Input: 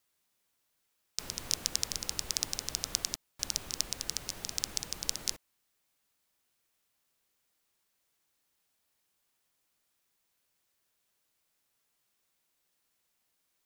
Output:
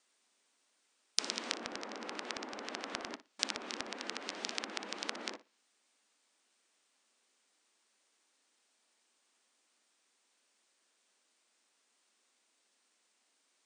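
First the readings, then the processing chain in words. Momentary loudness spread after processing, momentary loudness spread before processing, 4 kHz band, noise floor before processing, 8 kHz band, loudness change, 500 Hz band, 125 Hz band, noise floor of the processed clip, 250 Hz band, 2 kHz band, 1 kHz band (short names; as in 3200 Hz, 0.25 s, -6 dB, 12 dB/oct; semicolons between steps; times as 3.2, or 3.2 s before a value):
7 LU, 5 LU, -4.5 dB, -78 dBFS, -11.0 dB, -5.5 dB, +6.0 dB, -14.0 dB, -77 dBFS, +4.0 dB, +4.5 dB, +6.0 dB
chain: brick-wall FIR band-pass 200–9600 Hz; treble ducked by the level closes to 1500 Hz, closed at -36.5 dBFS; flutter echo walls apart 10.1 m, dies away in 0.23 s; gain +5.5 dB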